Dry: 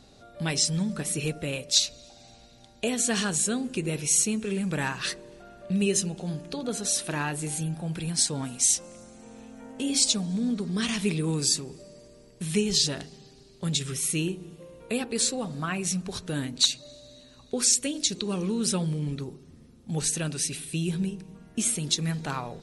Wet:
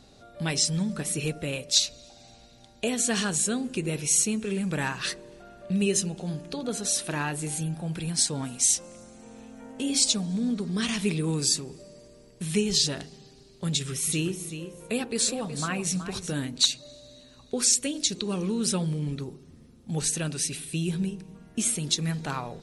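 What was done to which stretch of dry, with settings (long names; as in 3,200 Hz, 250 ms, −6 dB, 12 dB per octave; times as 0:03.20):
0:13.70–0:16.34: repeating echo 373 ms, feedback 17%, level −10.5 dB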